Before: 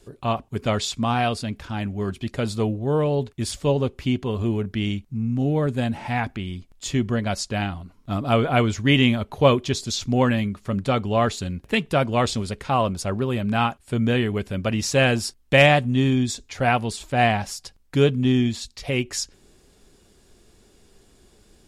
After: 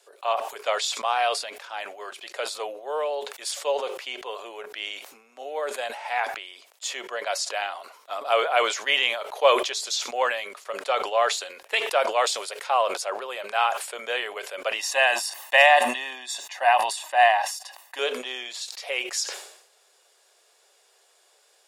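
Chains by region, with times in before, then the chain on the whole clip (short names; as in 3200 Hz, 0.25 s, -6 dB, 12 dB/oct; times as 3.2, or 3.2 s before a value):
12.21–12.67 high shelf 9500 Hz +8.5 dB + mismatched tape noise reduction encoder only
14.79–17.99 bell 5500 Hz -5.5 dB 1.3 oct + comb 1.1 ms, depth 81%
whole clip: steep high-pass 520 Hz 36 dB/oct; sustainer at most 75 dB/s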